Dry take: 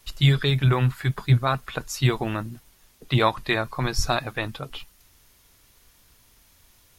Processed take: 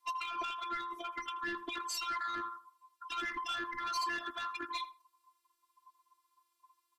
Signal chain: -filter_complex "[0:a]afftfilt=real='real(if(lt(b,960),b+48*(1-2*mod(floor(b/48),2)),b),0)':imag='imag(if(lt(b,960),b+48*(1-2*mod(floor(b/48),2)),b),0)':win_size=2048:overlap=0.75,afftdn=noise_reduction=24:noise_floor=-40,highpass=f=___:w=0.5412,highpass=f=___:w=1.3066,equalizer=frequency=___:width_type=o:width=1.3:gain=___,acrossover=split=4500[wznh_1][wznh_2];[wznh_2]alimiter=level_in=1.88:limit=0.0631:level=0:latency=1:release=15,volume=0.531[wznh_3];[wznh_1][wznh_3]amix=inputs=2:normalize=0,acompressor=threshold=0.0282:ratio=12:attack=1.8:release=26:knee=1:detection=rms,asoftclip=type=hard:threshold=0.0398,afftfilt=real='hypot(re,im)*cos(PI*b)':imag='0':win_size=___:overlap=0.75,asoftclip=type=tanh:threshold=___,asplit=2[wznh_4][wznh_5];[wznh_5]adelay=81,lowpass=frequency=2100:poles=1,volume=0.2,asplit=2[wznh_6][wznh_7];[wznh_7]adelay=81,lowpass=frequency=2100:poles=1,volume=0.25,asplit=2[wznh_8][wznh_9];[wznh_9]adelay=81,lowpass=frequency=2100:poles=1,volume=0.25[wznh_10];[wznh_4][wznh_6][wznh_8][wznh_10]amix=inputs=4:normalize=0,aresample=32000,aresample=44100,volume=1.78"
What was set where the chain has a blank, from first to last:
130, 130, 660, -9.5, 512, 0.0188